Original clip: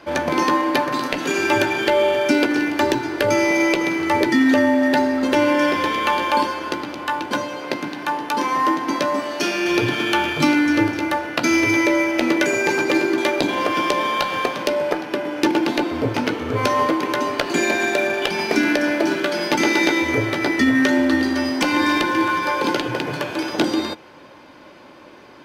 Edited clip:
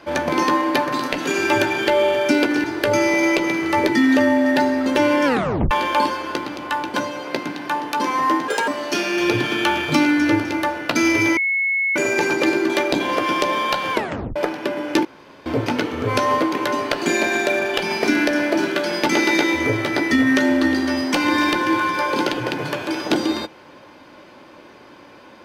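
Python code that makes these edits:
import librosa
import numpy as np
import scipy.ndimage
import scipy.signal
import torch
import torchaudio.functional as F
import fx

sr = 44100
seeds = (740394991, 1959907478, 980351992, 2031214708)

y = fx.edit(x, sr, fx.cut(start_s=2.64, length_s=0.37),
    fx.tape_stop(start_s=5.62, length_s=0.46),
    fx.speed_span(start_s=8.85, length_s=0.31, speed=1.56),
    fx.bleep(start_s=11.85, length_s=0.59, hz=2190.0, db=-17.0),
    fx.tape_stop(start_s=14.41, length_s=0.43),
    fx.room_tone_fill(start_s=15.53, length_s=0.41), tone=tone)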